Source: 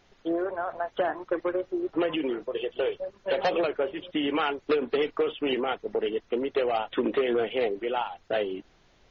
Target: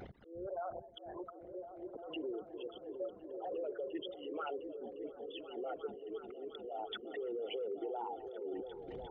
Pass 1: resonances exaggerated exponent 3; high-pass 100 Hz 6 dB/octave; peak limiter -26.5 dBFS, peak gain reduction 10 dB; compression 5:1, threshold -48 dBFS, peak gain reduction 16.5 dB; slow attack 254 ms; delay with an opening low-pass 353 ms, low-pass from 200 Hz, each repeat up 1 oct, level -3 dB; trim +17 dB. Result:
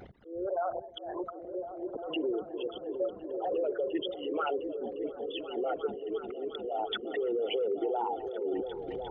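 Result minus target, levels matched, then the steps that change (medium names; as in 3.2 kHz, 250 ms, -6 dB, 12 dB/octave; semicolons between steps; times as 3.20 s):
compression: peak gain reduction -9 dB
change: compression 5:1, threshold -59.5 dBFS, peak gain reduction 25.5 dB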